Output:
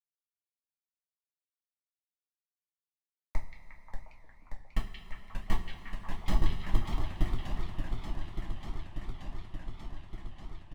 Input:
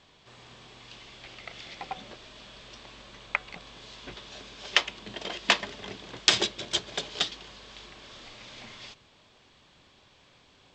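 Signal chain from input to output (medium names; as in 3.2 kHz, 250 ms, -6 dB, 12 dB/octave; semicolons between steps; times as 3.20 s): Schmitt trigger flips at -18.5 dBFS; tilt EQ -2.5 dB/octave; comb 1 ms, depth 62%; repeats whose band climbs or falls 178 ms, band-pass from 3 kHz, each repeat -0.7 oct, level -1 dB; two-slope reverb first 0.29 s, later 4.4 s, from -18 dB, DRR -2 dB; modulated delay 585 ms, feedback 80%, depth 218 cents, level -7 dB; trim -2 dB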